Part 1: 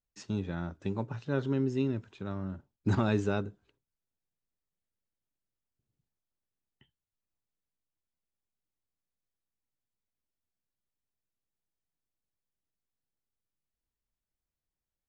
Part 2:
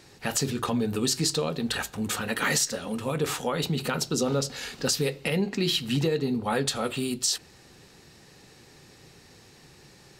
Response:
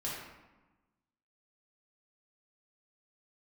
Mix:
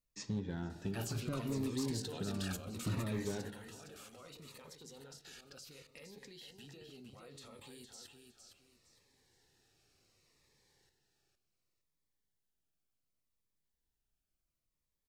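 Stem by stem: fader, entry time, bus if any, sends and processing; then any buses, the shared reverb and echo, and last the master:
+1.0 dB, 0.00 s, send −10.5 dB, echo send −22 dB, downward compressor 3 to 1, threshold −39 dBFS, peak gain reduction 12.5 dB
0:02.70 −4 dB → 0:03.50 −14 dB, 0.70 s, send −19.5 dB, echo send −6 dB, parametric band 190 Hz −9.5 dB 1.5 octaves; output level in coarse steps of 20 dB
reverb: on, RT60 1.1 s, pre-delay 3 ms
echo: repeating echo 461 ms, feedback 28%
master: gain into a clipping stage and back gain 30.5 dB; phaser whose notches keep moving one way falling 0.68 Hz

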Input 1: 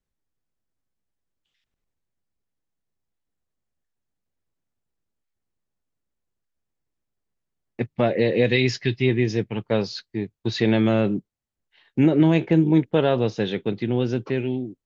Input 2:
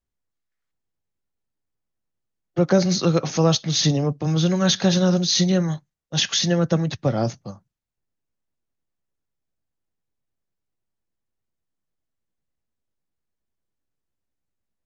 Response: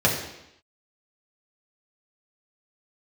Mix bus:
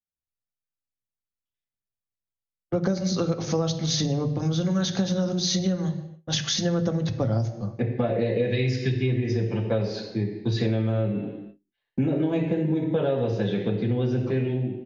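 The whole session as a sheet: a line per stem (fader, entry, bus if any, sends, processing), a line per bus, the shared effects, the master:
−10.0 dB, 0.00 s, send −7.5 dB, no processing
−4.5 dB, 0.15 s, send −22 dB, low-pass that shuts in the quiet parts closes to 1,800 Hz, open at −17.5 dBFS; low-shelf EQ 140 Hz +12 dB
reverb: on, RT60 0.85 s, pre-delay 3 ms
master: noise gate with hold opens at −31 dBFS; downward compressor, threshold −21 dBFS, peak gain reduction 12 dB

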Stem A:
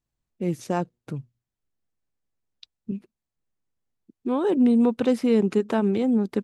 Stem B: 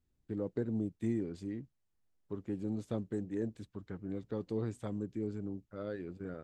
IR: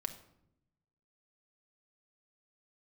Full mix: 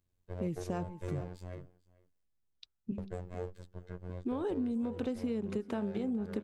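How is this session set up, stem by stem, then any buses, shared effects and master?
−6.5 dB, 0.00 s, no send, echo send −18.5 dB, low-shelf EQ 160 Hz +7 dB; hum removal 97.39 Hz, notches 17
0.0 dB, 0.00 s, muted 0:02.24–0:02.98, no send, echo send −23.5 dB, lower of the sound and its delayed copy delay 1.9 ms; phases set to zero 89.9 Hz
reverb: not used
echo: single-tap delay 446 ms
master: downward compressor 12 to 1, threshold −31 dBFS, peak gain reduction 12 dB

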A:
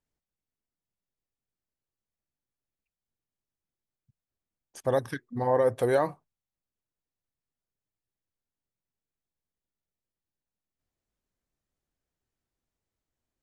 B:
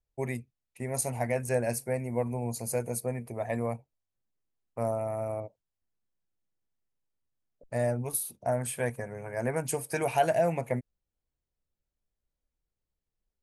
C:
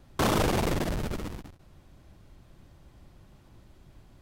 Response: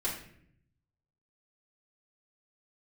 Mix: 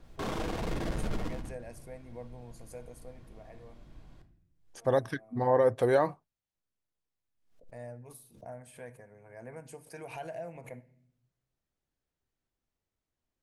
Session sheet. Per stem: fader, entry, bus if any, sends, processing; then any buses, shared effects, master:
−0.5 dB, 0.00 s, no send, no processing
−17.0 dB, 0.00 s, send −15 dB, background raised ahead of every attack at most 100 dB per second; automatic ducking −18 dB, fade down 1.95 s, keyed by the first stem
−3.5 dB, 0.00 s, send −8 dB, brickwall limiter −28 dBFS, peak gain reduction 11 dB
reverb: on, RT60 0.65 s, pre-delay 3 ms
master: high-shelf EQ 10,000 Hz −12 dB

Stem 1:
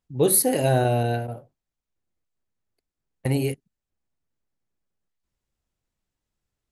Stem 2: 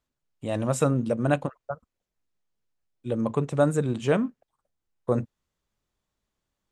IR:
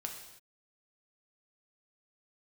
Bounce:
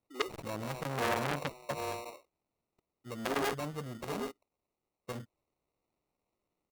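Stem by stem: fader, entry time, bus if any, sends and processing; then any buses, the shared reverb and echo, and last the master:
+2.0 dB, 0.00 s, no send, echo send −10 dB, Butterworth high-pass 300 Hz 48 dB per octave; gate with flip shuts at −14 dBFS, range −24 dB
0:00.90 −9 dB → 0:01.41 −1 dB → 0:02.57 −1 dB → 0:02.85 −13 dB, 0.00 s, no send, no echo send, high-pass filter 48 Hz 12 dB per octave; slew-rate limiting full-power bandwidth 60 Hz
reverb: not used
echo: single-tap delay 773 ms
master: decimation without filtering 27×; saturating transformer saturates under 2,600 Hz

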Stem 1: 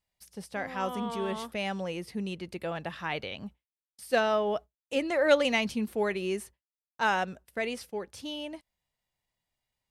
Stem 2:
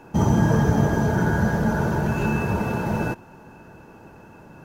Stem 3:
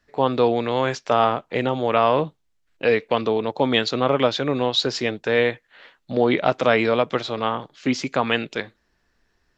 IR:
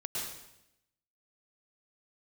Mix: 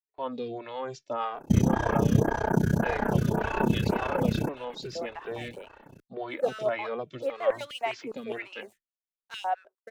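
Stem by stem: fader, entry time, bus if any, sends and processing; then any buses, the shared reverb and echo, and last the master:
−6.0 dB, 2.30 s, no send, running median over 9 samples; high-pass on a step sequencer 9.8 Hz 410–2,900 Hz
+3.0 dB, 1.35 s, no send, amplitude modulation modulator 31 Hz, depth 100%
−9.0 dB, 0.00 s, no send, barber-pole flanger 2.1 ms −2.3 Hz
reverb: not used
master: downward expander −43 dBFS; phaser with staggered stages 1.8 Hz

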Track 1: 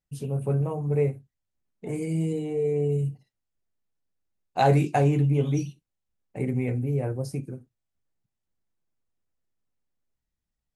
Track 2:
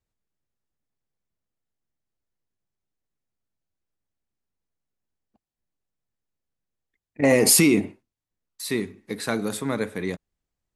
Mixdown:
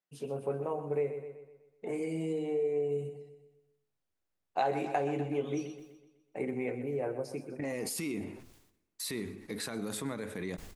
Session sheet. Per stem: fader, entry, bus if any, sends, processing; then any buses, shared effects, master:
+0.5 dB, 0.00 s, no send, echo send −12.5 dB, high-pass filter 370 Hz 12 dB per octave; high-shelf EQ 5,100 Hz −12 dB
−3.0 dB, 0.40 s, no send, echo send −23 dB, downward compressor, threshold −26 dBFS, peak gain reduction 12.5 dB; brickwall limiter −24.5 dBFS, peak gain reduction 10.5 dB; level that may fall only so fast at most 71 dB per second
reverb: not used
echo: repeating echo 125 ms, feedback 47%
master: downward compressor 3 to 1, threshold −29 dBFS, peak gain reduction 9.5 dB

